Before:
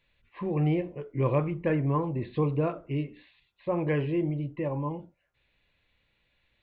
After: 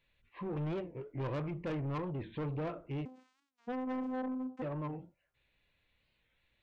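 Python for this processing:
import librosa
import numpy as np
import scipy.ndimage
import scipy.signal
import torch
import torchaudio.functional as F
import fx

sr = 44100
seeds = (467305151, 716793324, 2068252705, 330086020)

y = fx.vocoder(x, sr, bands=4, carrier='saw', carrier_hz=257.0, at=(3.05, 4.62))
y = 10.0 ** (-29.0 / 20.0) * np.tanh(y / 10.0 ** (-29.0 / 20.0))
y = fx.record_warp(y, sr, rpm=45.0, depth_cents=160.0)
y = y * librosa.db_to_amplitude(-4.5)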